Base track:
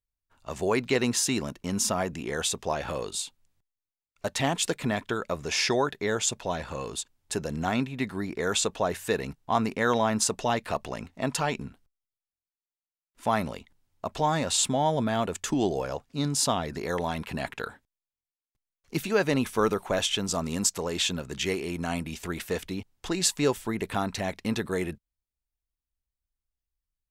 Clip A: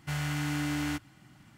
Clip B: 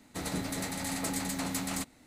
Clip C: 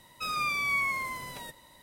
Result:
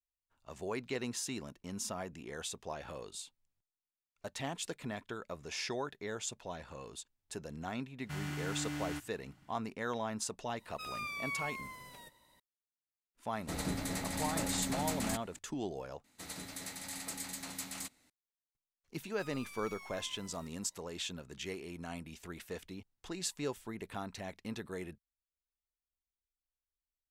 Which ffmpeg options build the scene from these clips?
ffmpeg -i bed.wav -i cue0.wav -i cue1.wav -i cue2.wav -filter_complex "[3:a]asplit=2[link_01][link_02];[2:a]asplit=2[link_03][link_04];[0:a]volume=-13dB[link_05];[link_03]lowshelf=frequency=69:gain=9[link_06];[link_04]tiltshelf=frequency=1300:gain=-5[link_07];[link_02]aeval=exprs='(tanh(63.1*val(0)+0.6)-tanh(0.6))/63.1':channel_layout=same[link_08];[link_05]asplit=2[link_09][link_10];[link_09]atrim=end=16.044[link_11];[link_07]atrim=end=2.06,asetpts=PTS-STARTPTS,volume=-10dB[link_12];[link_10]atrim=start=18.096[link_13];[1:a]atrim=end=1.57,asetpts=PTS-STARTPTS,volume=-8dB,afade=type=in:duration=0.004:curve=hsin,afade=type=out:start_time=1.566:duration=0.004:curve=hsin,adelay=353682S[link_14];[link_01]atrim=end=1.82,asetpts=PTS-STARTPTS,volume=-11dB,afade=type=in:duration=0.004:curve=hsin,afade=type=out:start_time=1.816:duration=0.004:curve=hsin,adelay=466578S[link_15];[link_06]atrim=end=2.06,asetpts=PTS-STARTPTS,volume=-3dB,afade=type=in:duration=0.004:curve=hsin,afade=type=out:start_time=2.056:duration=0.004:curve=hsin,adelay=13330[link_16];[link_08]atrim=end=1.82,asetpts=PTS-STARTPTS,volume=-14.5dB,afade=type=in:duration=0.004:curve=hsin,afade=type=out:start_time=1.816:duration=0.004:curve=hsin,adelay=18970[link_17];[link_11][link_12]acrossfade=duration=0.004:curve1=hsin:curve2=hsin[link_18];[link_18][link_13]acrossfade=duration=0.004:curve1=hsin:curve2=hsin[link_19];[link_19][link_14][link_15][link_16][link_17]amix=inputs=5:normalize=0" out.wav

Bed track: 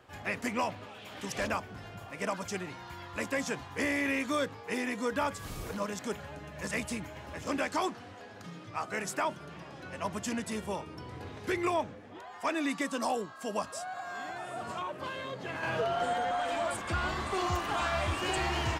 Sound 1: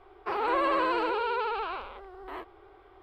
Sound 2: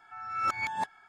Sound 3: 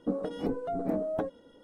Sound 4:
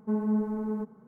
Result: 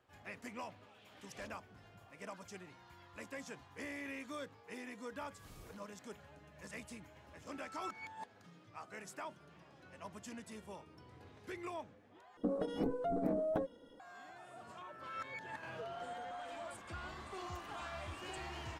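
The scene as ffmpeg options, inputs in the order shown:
ffmpeg -i bed.wav -i cue0.wav -i cue1.wav -i cue2.wav -filter_complex "[2:a]asplit=2[link_01][link_02];[0:a]volume=-14.5dB[link_03];[3:a]acompressor=threshold=-34dB:ratio=3:attack=95:release=35:knee=1:detection=rms[link_04];[link_02]equalizer=frequency=1800:width=3.9:gain=12.5[link_05];[link_03]asplit=2[link_06][link_07];[link_06]atrim=end=12.374[link_08];[link_04]atrim=end=1.63,asetpts=PTS-STARTPTS,volume=-3dB[link_09];[link_07]atrim=start=13.996[link_10];[link_01]atrim=end=1.08,asetpts=PTS-STARTPTS,volume=-16.5dB,afade=type=in:duration=0.004:curve=hsin,afade=type=out:start_time=1.076:duration=0.004:curve=hsin,adelay=7400[link_11];[link_05]atrim=end=1.08,asetpts=PTS-STARTPTS,volume=-18dB,afade=type=in:duration=0.004:curve=hsin,afade=type=out:start_time=1.076:duration=0.004:curve=hsin,adelay=14720[link_12];[link_08][link_09]acrossfade=duration=0.004:curve1=hsin:curve2=hsin[link_13];[link_13][link_10]acrossfade=duration=0.004:curve1=hsin:curve2=hsin[link_14];[link_14][link_11][link_12]amix=inputs=3:normalize=0" out.wav

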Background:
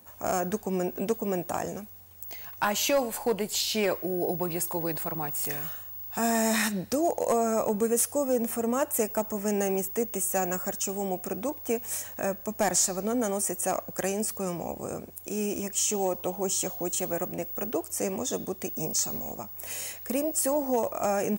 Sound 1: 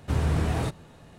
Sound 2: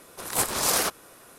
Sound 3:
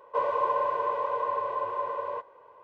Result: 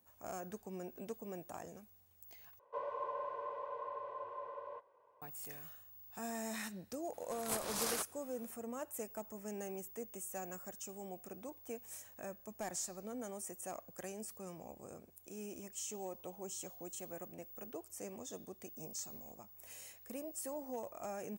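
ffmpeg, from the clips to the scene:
ffmpeg -i bed.wav -i cue0.wav -i cue1.wav -i cue2.wav -filter_complex "[0:a]volume=-17dB[link_01];[3:a]equalizer=frequency=620:width=1.4:gain=3.5[link_02];[link_01]asplit=2[link_03][link_04];[link_03]atrim=end=2.594[link_05];[link_02]atrim=end=2.63,asetpts=PTS-STARTPTS,volume=-16.5dB[link_06];[link_04]atrim=start=5.216[link_07];[2:a]atrim=end=1.38,asetpts=PTS-STARTPTS,volume=-14.5dB,afade=type=in:duration=0.004:curve=hsin,afade=type=out:start_time=1.376:duration=0.004:curve=hsin,adelay=7130[link_08];[link_05][link_06]acrossfade=duration=0.004:curve1=hsin:curve2=hsin[link_09];[link_09][link_07]acrossfade=duration=0.004:curve1=hsin:curve2=hsin[link_10];[link_10][link_08]amix=inputs=2:normalize=0" out.wav

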